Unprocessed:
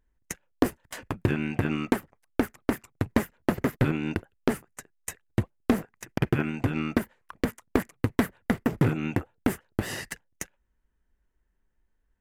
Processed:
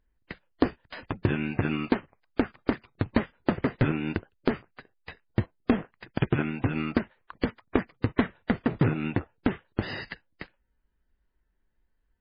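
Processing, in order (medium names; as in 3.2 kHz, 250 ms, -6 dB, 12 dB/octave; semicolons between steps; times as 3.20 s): MP3 16 kbps 11.025 kHz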